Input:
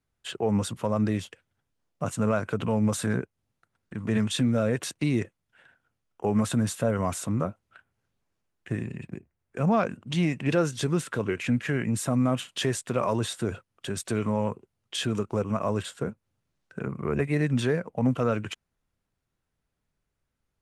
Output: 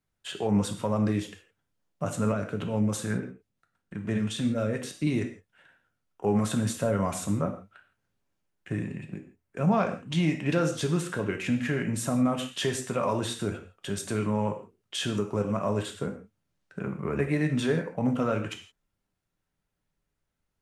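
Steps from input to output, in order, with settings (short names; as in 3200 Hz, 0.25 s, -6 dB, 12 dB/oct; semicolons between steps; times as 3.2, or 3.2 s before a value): 2.32–5.07 rotary speaker horn 6 Hz; non-linear reverb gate 0.19 s falling, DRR 4 dB; gain -2 dB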